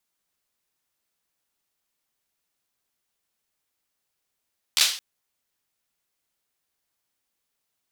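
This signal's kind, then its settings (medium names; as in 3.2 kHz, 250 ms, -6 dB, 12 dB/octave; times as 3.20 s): hand clap length 0.22 s, apart 13 ms, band 3.9 kHz, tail 0.43 s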